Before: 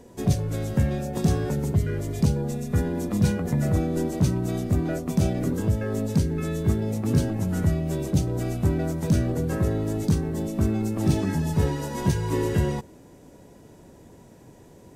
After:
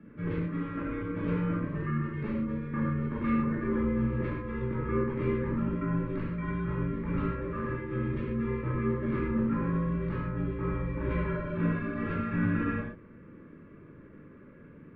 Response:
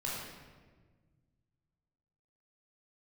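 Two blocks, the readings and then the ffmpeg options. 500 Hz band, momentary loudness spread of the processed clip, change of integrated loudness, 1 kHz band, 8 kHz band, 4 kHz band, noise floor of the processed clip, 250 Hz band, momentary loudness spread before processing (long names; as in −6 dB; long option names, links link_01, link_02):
−5.5 dB, 6 LU, −6.0 dB, −2.0 dB, below −40 dB, below −15 dB, −51 dBFS, −4.5 dB, 3 LU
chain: -filter_complex "[0:a]asuperstop=centerf=1000:order=4:qfactor=2.9[link_01];[1:a]atrim=start_sample=2205,afade=type=out:start_time=0.2:duration=0.01,atrim=end_sample=9261[link_02];[link_01][link_02]afir=irnorm=-1:irlink=0,highpass=frequency=400:width_type=q:width=0.5412,highpass=frequency=400:width_type=q:width=1.307,lowpass=frequency=2500:width_type=q:width=0.5176,lowpass=frequency=2500:width_type=q:width=0.7071,lowpass=frequency=2500:width_type=q:width=1.932,afreqshift=-260,volume=2.5dB"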